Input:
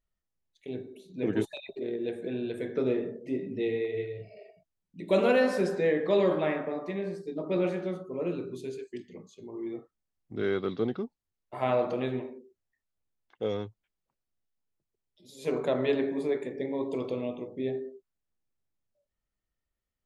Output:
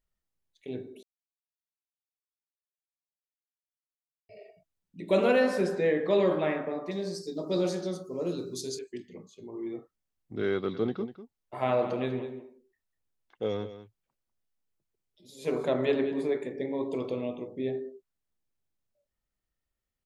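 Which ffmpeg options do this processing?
-filter_complex "[0:a]asettb=1/sr,asplit=3[s0][s1][s2];[s0]atrim=end=6.914[s3];[s1]atrim=start=6.91:end=8.79,asetpts=PTS-STARTPTS,afade=t=in:d=0.004:c=qsin,afade=t=out:st=1.876:d=0.004:c=qsin,highshelf=f=3500:t=q:w=3:g=13[s4];[s2]atrim=start=8.786[s5];[s3][s4]acrossfade=d=0.004:c1=hsin:c2=qsin[s6];[s6][s5]acrossfade=d=0.004:c1=qsin:c2=hsin,asplit=3[s7][s8][s9];[s7]afade=t=out:st=10.73:d=0.02[s10];[s8]aecho=1:1:197:0.224,afade=t=in:st=10.73:d=0.02,afade=t=out:st=16.28:d=0.02[s11];[s9]afade=t=in:st=16.28:d=0.02[s12];[s10][s11][s12]amix=inputs=3:normalize=0,asplit=3[s13][s14][s15];[s13]atrim=end=1.03,asetpts=PTS-STARTPTS,afade=t=out:st=1.026:d=0.004:c=hsin[s16];[s14]atrim=start=1.03:end=4.29,asetpts=PTS-STARTPTS,volume=0[s17];[s15]atrim=start=4.29,asetpts=PTS-STARTPTS,afade=t=in:d=0.004:c=hsin[s18];[s16][s17][s18]concat=n=3:v=0:a=1"

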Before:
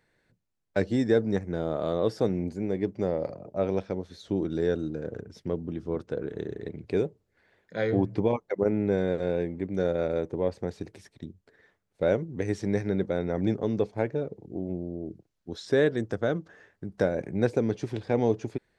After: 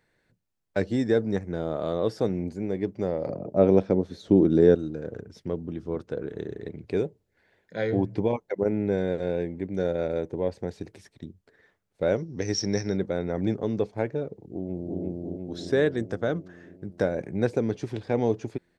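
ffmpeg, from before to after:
-filter_complex "[0:a]asettb=1/sr,asplit=3[s0][s1][s2];[s0]atrim=end=3.264[s3];[s1]atrim=start=3.26:end=4.75,asetpts=PTS-STARTPTS,afade=t=in:d=0.004:c=qsin,afade=t=out:st=1.486:d=0.004:c=qsin,equalizer=f=260:w=0.37:g=10.5[s4];[s2]atrim=start=4.746[s5];[s3][s4]acrossfade=d=0.004:c1=hsin:c2=qsin[s6];[s6][s5]acrossfade=d=0.004:c1=qsin:c2=hsin,asettb=1/sr,asplit=3[s7][s8][s9];[s7]atrim=end=7.034[s10];[s8]atrim=start=7.03:end=10.84,asetpts=PTS-STARTPTS,afade=t=in:d=0.004:c=qsin,afade=t=out:st=3.806:d=0.004:c=qsin,equalizer=f=1200:w=6.9:g=-7.5[s11];[s9]atrim=start=10.836[s12];[s10][s11]acrossfade=d=0.004:c1=hsin:c2=qsin[s13];[s13][s12]acrossfade=d=0.004:c1=qsin:c2=hsin,asettb=1/sr,asplit=3[s14][s15][s16];[s14]atrim=end=12.164[s17];[s15]atrim=start=12.16:end=12.97,asetpts=PTS-STARTPTS,afade=t=in:d=0.004:c=qsin,afade=t=out:st=0.806:d=0.004:c=qsin,lowpass=f=5500:t=q:w=14[s18];[s16]atrim=start=12.966[s19];[s17][s18]acrossfade=d=0.004:c1=hsin:c2=qsin[s20];[s20][s19]acrossfade=d=0.004:c1=qsin:c2=hsin,asplit=2[s21][s22];[s22]afade=t=in:st=14.38:d=0.01,afade=t=out:st=15.01:d=0.01,aecho=0:1:350|700|1050|1400|1750|2100|2450|2800|3150|3500|3850:0.944061|0.61364|0.398866|0.259263|0.168521|0.109538|0.0712|0.04628|0.030082|0.0195533|0.0127096[s23];[s21][s23]amix=inputs=2:normalize=0"

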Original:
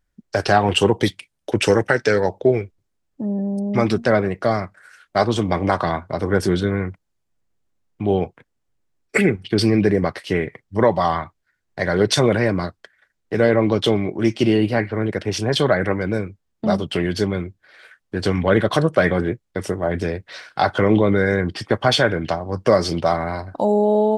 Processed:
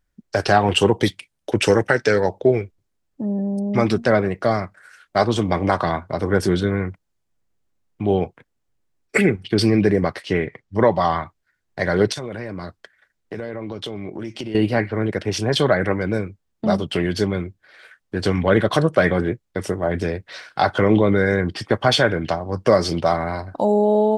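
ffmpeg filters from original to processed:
-filter_complex "[0:a]asettb=1/sr,asplit=3[s0][s1][s2];[s0]atrim=end=10.224[s3];[s1]atrim=start=10.22:end=11.16,asetpts=PTS-STARTPTS,afade=t=in:d=0.004:c=qsin,afade=t=out:st=0.936:d=0.004:c=qsin,lowpass=7100[s4];[s2]atrim=start=11.156[s5];[s3][s4]acrossfade=d=0.004:c1=hsin:c2=qsin[s6];[s6][s5]acrossfade=d=0.004:c1=qsin:c2=hsin,asettb=1/sr,asplit=3[s7][s8][s9];[s7]atrim=end=12.124[s10];[s8]atrim=start=12.12:end=14.55,asetpts=PTS-STARTPTS,afade=t=in:d=0.004:c=qsin,afade=t=out:st=2.426:d=0.004:c=qsin,acompressor=threshold=0.0501:ratio=8:attack=3.2:release=140:knee=1:detection=peak[s11];[s9]atrim=start=14.546[s12];[s10][s11]acrossfade=d=0.004:c1=hsin:c2=qsin[s13];[s13][s12]acrossfade=d=0.004:c1=qsin:c2=hsin"

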